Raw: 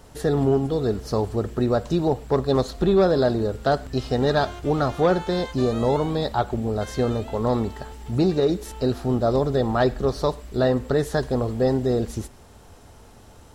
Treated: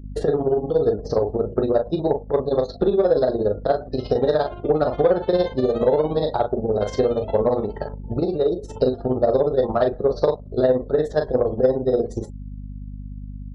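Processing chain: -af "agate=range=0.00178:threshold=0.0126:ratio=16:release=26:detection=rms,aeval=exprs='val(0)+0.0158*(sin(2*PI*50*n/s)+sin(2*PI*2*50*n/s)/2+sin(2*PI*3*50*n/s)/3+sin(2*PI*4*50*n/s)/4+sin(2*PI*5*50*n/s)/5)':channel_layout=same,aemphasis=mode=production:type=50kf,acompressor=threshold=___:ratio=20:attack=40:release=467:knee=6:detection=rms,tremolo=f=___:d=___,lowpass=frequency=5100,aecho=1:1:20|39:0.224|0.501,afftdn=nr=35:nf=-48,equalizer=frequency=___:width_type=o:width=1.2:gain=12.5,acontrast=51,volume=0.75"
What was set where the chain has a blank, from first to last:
0.0631, 17, 0.86, 520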